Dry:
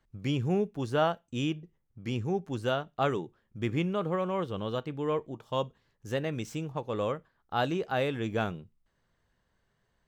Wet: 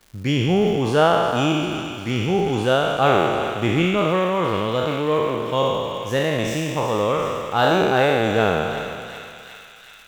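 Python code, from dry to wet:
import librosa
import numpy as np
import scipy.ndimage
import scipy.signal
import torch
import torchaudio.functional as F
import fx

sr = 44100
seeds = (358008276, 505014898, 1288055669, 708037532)

y = fx.spec_trails(x, sr, decay_s=1.99)
y = fx.dmg_crackle(y, sr, seeds[0], per_s=280.0, level_db=-46.0)
y = fx.echo_thinned(y, sr, ms=371, feedback_pct=78, hz=1200.0, wet_db=-10.0)
y = y * librosa.db_to_amplitude(8.0)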